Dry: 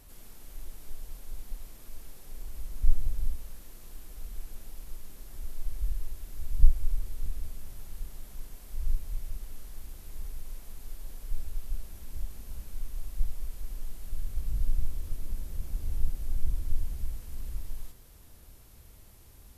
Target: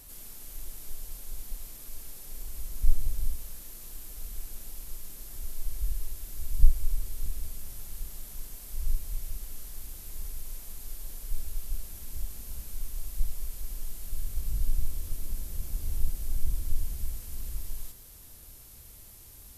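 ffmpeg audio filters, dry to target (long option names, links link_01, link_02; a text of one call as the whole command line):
ffmpeg -i in.wav -af "highshelf=frequency=3900:gain=10.5" out.wav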